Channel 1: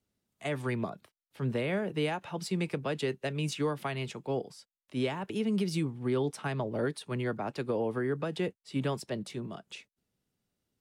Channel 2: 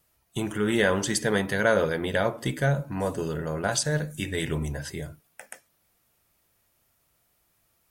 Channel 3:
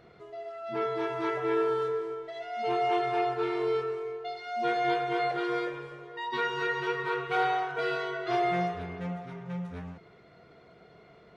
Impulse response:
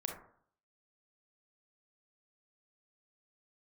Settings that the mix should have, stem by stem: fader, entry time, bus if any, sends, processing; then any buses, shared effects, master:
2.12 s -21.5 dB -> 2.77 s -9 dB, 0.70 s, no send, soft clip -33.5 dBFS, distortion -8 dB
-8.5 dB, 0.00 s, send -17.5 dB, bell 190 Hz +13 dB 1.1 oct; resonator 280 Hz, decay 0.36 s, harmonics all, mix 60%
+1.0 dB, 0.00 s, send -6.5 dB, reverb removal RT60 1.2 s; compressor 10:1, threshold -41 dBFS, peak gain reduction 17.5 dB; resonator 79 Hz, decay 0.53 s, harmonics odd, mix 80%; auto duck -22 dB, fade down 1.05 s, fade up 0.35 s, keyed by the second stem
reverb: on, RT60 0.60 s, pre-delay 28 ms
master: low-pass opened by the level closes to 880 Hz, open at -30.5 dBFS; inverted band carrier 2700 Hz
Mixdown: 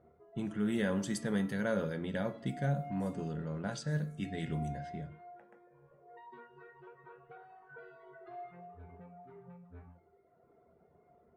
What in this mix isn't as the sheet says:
stem 1: muted; master: missing inverted band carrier 2700 Hz

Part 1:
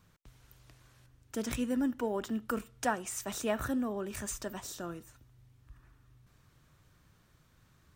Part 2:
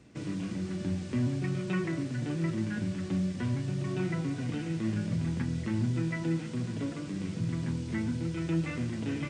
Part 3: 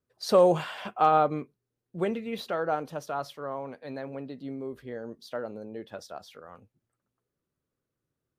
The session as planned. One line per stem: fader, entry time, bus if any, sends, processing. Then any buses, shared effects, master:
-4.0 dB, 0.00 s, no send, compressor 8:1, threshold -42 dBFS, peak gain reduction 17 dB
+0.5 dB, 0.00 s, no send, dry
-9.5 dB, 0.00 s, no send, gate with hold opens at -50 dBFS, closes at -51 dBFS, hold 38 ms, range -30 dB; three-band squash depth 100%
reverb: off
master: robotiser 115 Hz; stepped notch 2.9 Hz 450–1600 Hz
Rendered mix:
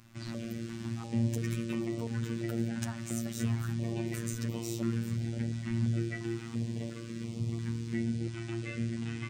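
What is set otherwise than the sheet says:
stem 1 -4.0 dB -> +5.5 dB; stem 3 -9.5 dB -> -16.5 dB

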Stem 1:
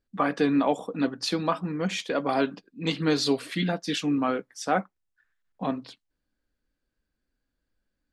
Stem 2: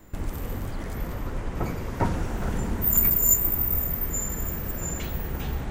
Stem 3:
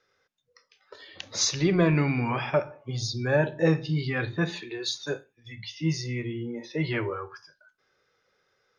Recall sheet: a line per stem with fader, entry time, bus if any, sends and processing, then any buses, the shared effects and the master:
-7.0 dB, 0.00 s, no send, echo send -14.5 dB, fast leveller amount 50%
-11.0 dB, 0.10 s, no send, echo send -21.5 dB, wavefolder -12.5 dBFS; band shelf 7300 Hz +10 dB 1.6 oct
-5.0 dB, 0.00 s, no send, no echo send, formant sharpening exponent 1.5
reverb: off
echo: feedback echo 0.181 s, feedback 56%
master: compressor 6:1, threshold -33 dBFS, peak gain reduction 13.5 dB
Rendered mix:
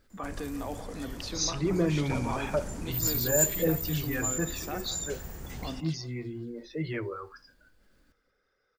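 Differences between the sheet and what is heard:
stem 1 -7.0 dB -> -15.0 dB; master: missing compressor 6:1, threshold -33 dBFS, peak gain reduction 13.5 dB

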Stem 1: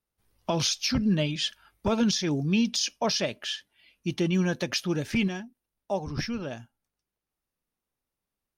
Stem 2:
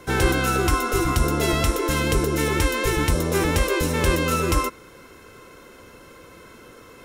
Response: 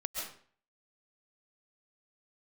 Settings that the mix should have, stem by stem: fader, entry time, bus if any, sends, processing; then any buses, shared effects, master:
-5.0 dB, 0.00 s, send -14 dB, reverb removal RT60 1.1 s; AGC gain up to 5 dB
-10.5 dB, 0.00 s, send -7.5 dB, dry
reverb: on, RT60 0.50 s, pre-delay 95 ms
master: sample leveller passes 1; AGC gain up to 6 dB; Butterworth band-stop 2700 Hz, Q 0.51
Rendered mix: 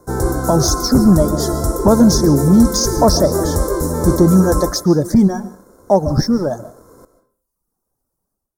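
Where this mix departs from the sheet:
stem 1 -5.0 dB -> +5.5 dB; stem 2 -10.5 dB -> -3.5 dB

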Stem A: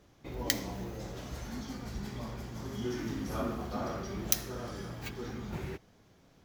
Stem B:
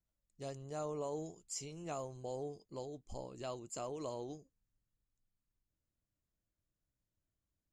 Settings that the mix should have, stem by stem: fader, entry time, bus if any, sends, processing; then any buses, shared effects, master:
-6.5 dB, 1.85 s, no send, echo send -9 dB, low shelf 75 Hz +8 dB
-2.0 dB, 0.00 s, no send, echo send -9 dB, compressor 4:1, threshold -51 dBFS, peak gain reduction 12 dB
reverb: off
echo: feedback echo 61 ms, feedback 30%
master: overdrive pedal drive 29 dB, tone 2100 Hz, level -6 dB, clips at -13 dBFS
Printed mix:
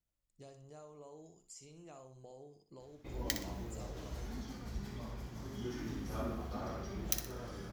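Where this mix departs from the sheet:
stem A: entry 1.85 s -> 2.80 s; master: missing overdrive pedal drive 29 dB, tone 2100 Hz, level -6 dB, clips at -13 dBFS

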